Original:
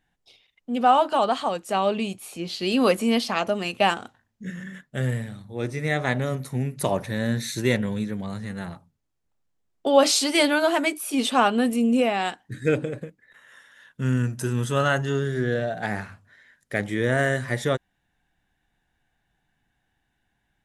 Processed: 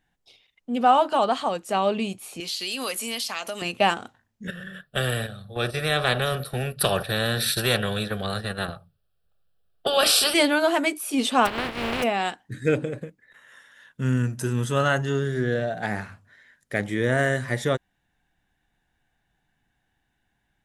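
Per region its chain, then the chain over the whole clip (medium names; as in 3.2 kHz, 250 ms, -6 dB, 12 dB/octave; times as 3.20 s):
2.40–3.62 s: tilt EQ +4.5 dB/octave + compression 3:1, threshold -28 dBFS
4.47–10.34 s: static phaser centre 1.4 kHz, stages 8 + gate -38 dBFS, range -10 dB + spectrum-flattening compressor 2:1
11.45–12.02 s: spectral contrast reduction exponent 0.19 + distance through air 410 m
whole clip: none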